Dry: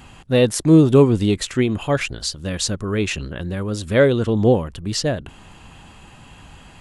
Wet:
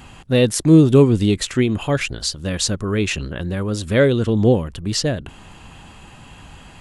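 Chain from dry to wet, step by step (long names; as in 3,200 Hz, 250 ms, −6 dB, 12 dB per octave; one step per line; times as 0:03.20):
dynamic equaliser 850 Hz, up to −5 dB, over −27 dBFS, Q 0.77
level +2 dB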